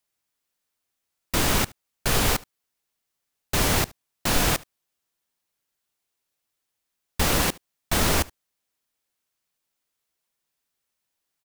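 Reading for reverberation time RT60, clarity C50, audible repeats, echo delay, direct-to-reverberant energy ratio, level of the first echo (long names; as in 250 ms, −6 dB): no reverb audible, no reverb audible, 1, 73 ms, no reverb audible, −23.5 dB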